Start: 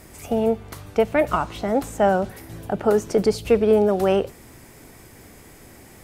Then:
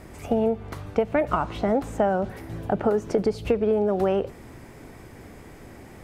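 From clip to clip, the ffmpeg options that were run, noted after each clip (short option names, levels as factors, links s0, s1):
-af "highshelf=f=3000:g=-9,acompressor=threshold=0.0891:ratio=12,highshelf=f=7900:g=-6.5,volume=1.41"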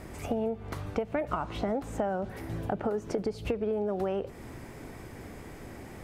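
-af "acompressor=threshold=0.0282:ratio=2.5"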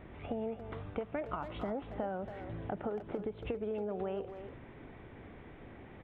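-filter_complex "[0:a]aresample=8000,aresample=44100,asplit=2[s0][s1];[s1]adelay=280,highpass=300,lowpass=3400,asoftclip=type=hard:threshold=0.0562,volume=0.355[s2];[s0][s2]amix=inputs=2:normalize=0,volume=0.447"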